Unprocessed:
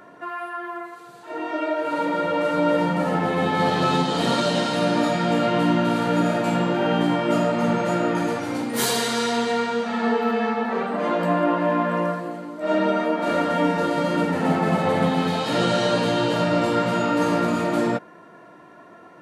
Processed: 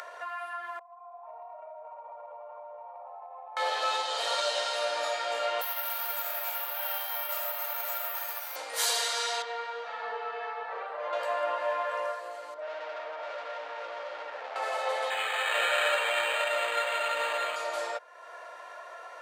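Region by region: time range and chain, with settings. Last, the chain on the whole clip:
0.79–3.57 s: cascade formant filter a + compression, threshold -45 dBFS
5.61–8.56 s: high-pass 690 Hz 24 dB/octave + valve stage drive 24 dB, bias 0.65 + careless resampling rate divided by 3×, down filtered, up zero stuff
9.42–11.13 s: tape spacing loss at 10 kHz 25 dB + band-stop 680 Hz, Q 17
12.54–14.56 s: overload inside the chain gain 26.5 dB + tape spacing loss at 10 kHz 28 dB
15.10–17.56 s: frequency weighting D + decimation joined by straight lines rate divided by 8×
whole clip: elliptic high-pass 530 Hz, stop band 80 dB; peaking EQ 5.7 kHz +6.5 dB 2.2 oct; upward compressor, threshold -26 dBFS; trim -7.5 dB

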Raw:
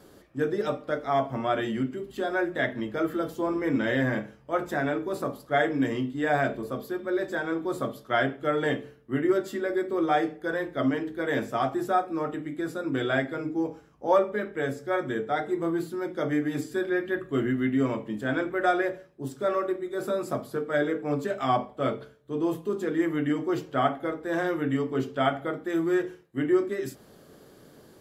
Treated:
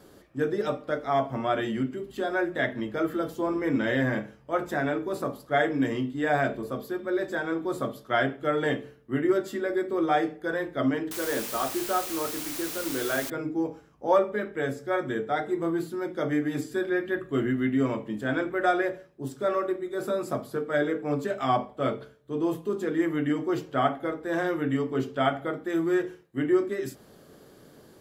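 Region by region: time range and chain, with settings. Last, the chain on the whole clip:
11.11–13.30 s: cabinet simulation 230–3400 Hz, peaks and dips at 270 Hz -3 dB, 720 Hz -5 dB, 2 kHz -8 dB + word length cut 6-bit, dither triangular
whole clip: none

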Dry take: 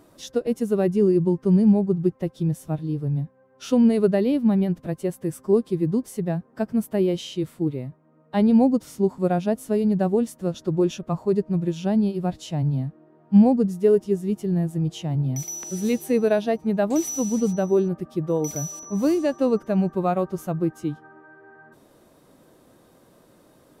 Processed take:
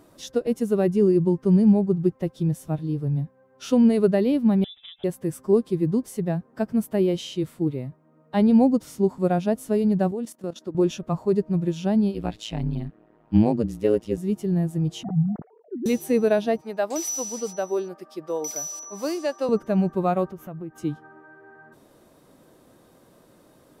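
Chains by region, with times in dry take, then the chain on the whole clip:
4.64–5.04 s: bass shelf 230 Hz -8 dB + compression 10:1, threshold -38 dBFS + frequency inversion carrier 3.7 kHz
10.11–10.75 s: brick-wall FIR high-pass 170 Hz + level held to a coarse grid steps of 14 dB
12.14–14.18 s: peaking EQ 2.7 kHz +9 dB 1.6 oct + AM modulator 110 Hz, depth 85%
15.03–15.86 s: formants replaced by sine waves + Gaussian low-pass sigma 6.7 samples + comb of notches 530 Hz
16.61–19.49 s: high-pass 510 Hz + peaking EQ 5 kHz +8.5 dB 0.25 oct
20.31–20.78 s: high-order bell 6.6 kHz -11 dB + compression 3:1, threshold -35 dBFS
whole clip: none

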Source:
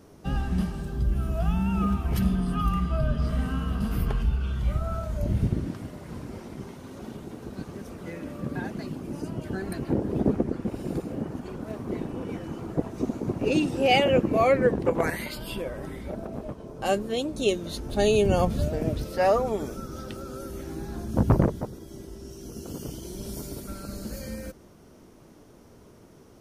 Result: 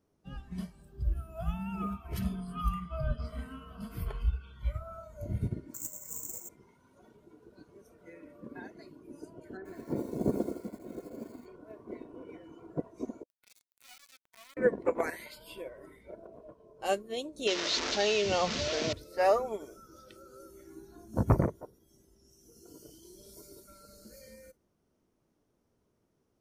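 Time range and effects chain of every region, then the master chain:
5.74–6.49 s: treble shelf 9.1 kHz -11.5 dB + careless resampling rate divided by 6×, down filtered, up zero stuff + loudspeaker Doppler distortion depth 0.24 ms
9.57–11.46 s: low-pass 1.7 kHz + bit-crushed delay 81 ms, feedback 55%, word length 7-bit, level -5 dB
13.23–14.57 s: Bessel high-pass 830 Hz, order 8 + compression 4:1, threshold -42 dBFS + word length cut 6-bit, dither none
17.47–18.93 s: one-bit delta coder 32 kbps, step -30.5 dBFS + tilt EQ +2.5 dB/octave + level flattener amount 70%
whole clip: spectral noise reduction 12 dB; dynamic bell 210 Hz, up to -4 dB, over -34 dBFS, Q 0.77; upward expansion 1.5:1, over -38 dBFS; trim -1 dB

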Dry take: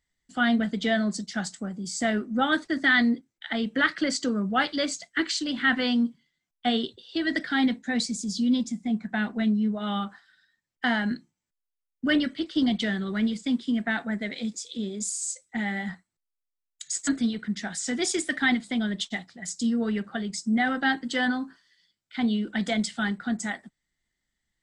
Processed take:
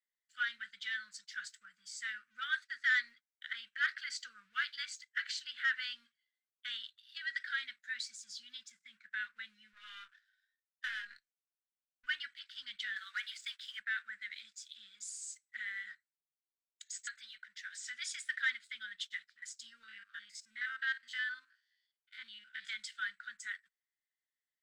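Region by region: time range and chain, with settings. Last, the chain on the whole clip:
9.73–12.06 s: partial rectifier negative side -12 dB + doubling 22 ms -9 dB
12.96–13.80 s: high-pass 710 Hz 24 dB/octave + waveshaping leveller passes 2
16.82–17.84 s: Chebyshev low-pass 8.6 kHz, order 6 + peaking EQ 280 Hz -9.5 dB 2.8 oct
19.83–22.69 s: spectrogram pixelated in time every 50 ms + high-pass 160 Hz
whole clip: waveshaping leveller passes 1; elliptic high-pass 1.5 kHz, stop band 50 dB; tilt EQ -3.5 dB/octave; trim -7 dB

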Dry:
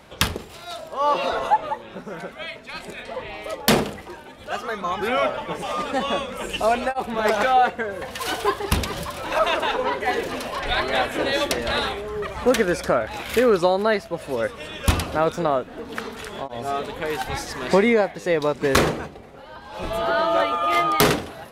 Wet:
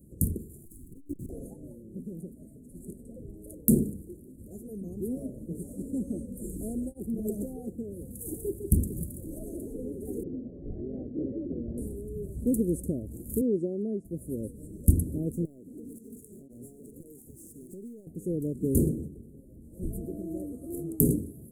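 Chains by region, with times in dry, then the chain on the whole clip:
0.65–1.30 s: comb filter that takes the minimum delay 0.76 ms + inverse Chebyshev band-stop 820–2100 Hz, stop band 50 dB + transformer saturation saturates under 270 Hz
10.23–11.78 s: steep low-pass 2.5 kHz + bass shelf 74 Hz -10 dB
13.41–14.05 s: high-pass 200 Hz + distance through air 120 m
15.45–18.07 s: frequency weighting D + compression 10:1, threshold -30 dBFS + hard clipper -29 dBFS
whole clip: inverse Chebyshev band-stop 900–3800 Hz, stop band 60 dB; high-order bell 4 kHz -11 dB 1.3 oct

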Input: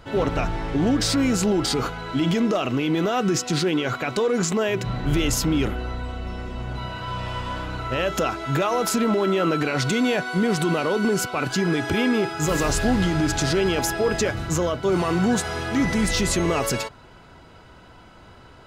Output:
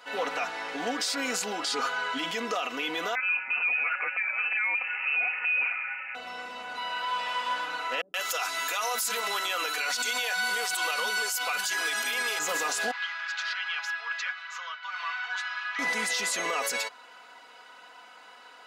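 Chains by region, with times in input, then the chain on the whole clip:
1.63–2.18 s: low-pass 10 kHz + comb 7.4 ms, depth 61% + upward compressor, threshold -23 dBFS
3.15–6.15 s: high-pass 170 Hz 24 dB/octave + hum notches 60/120/180/240/300/360/420/480 Hz + frequency inversion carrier 2.8 kHz
8.01–12.39 s: RIAA curve recording + bands offset in time lows, highs 130 ms, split 260 Hz
12.91–15.79 s: high-pass 1.2 kHz 24 dB/octave + distance through air 260 m
whole clip: high-pass 800 Hz 12 dB/octave; comb 4.1 ms, depth 65%; peak limiter -20 dBFS

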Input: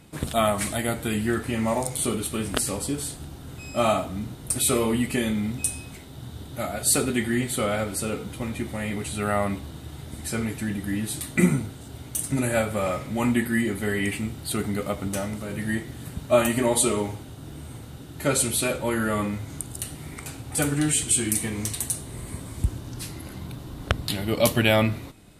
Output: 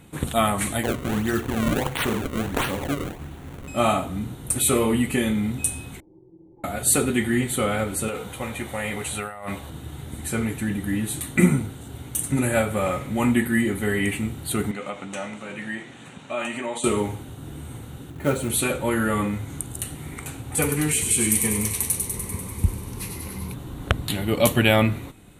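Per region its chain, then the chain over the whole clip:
0.83–3.68 s: hum notches 60/120/180/240/300/360/420/480/540 Hz + decimation with a swept rate 30×, swing 160% 1.5 Hz
6.00–6.64 s: ring modulator 250 Hz + compression 10:1, threshold -39 dBFS + cascade formant filter u
8.08–9.70 s: resonant low shelf 420 Hz -7 dB, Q 1.5 + compressor with a negative ratio -32 dBFS
14.71–16.84 s: compression 3:1, threshold -25 dBFS + cabinet simulation 270–7400 Hz, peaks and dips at 300 Hz -5 dB, 420 Hz -6 dB, 2.5 kHz +5 dB, 4.7 kHz -4 dB
18.10–18.50 s: low-pass 1.3 kHz 6 dB/octave + short-mantissa float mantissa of 2-bit
20.59–23.54 s: rippled EQ curve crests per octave 0.85, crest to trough 8 dB + feedback echo behind a high-pass 98 ms, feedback 72%, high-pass 3.2 kHz, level -4 dB
whole clip: peaking EQ 5 kHz -13 dB 0.36 oct; band-stop 630 Hz, Q 12; trim +2.5 dB

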